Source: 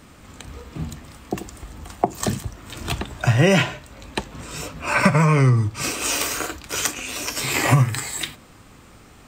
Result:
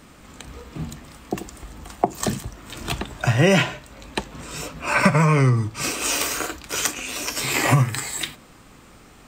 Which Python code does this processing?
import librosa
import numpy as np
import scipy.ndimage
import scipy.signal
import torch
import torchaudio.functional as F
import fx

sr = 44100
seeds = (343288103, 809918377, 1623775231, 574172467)

y = fx.peak_eq(x, sr, hz=90.0, db=-7.5, octaves=0.56)